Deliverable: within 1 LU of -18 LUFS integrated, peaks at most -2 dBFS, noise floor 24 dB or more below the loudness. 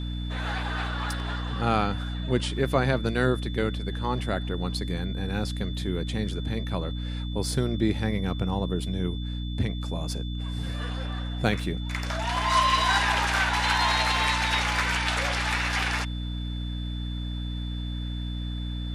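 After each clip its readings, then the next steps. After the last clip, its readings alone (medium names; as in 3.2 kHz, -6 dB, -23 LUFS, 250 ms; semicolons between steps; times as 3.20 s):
hum 60 Hz; highest harmonic 300 Hz; hum level -29 dBFS; steady tone 3.5 kHz; tone level -42 dBFS; loudness -27.5 LUFS; peak level -7.0 dBFS; loudness target -18.0 LUFS
-> de-hum 60 Hz, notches 5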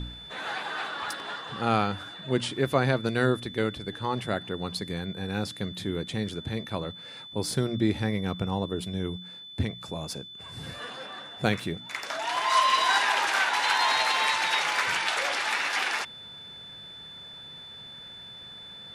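hum not found; steady tone 3.5 kHz; tone level -42 dBFS
-> band-stop 3.5 kHz, Q 30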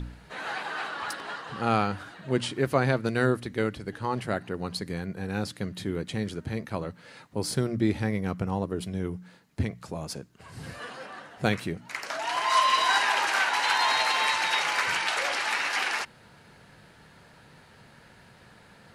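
steady tone not found; loudness -28.0 LUFS; peak level -8.0 dBFS; loudness target -18.0 LUFS
-> trim +10 dB; peak limiter -2 dBFS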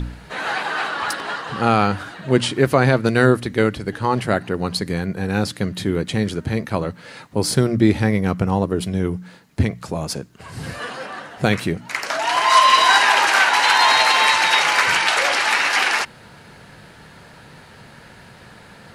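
loudness -18.0 LUFS; peak level -2.0 dBFS; noise floor -45 dBFS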